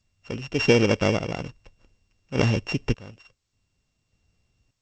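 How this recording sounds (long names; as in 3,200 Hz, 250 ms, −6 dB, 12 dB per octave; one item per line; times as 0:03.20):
a buzz of ramps at a fixed pitch in blocks of 16 samples
sample-and-hold tremolo 1.7 Hz, depth 90%
G.722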